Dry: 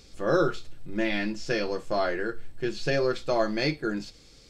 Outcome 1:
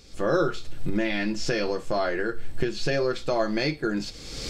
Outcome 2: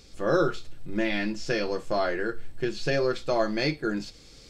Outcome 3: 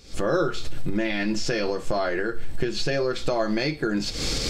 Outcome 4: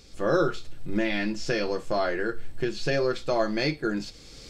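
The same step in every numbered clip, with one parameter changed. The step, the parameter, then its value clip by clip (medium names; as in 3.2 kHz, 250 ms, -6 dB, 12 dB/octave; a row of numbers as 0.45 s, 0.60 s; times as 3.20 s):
recorder AGC, rising by: 35 dB/s, 5 dB/s, 90 dB/s, 14 dB/s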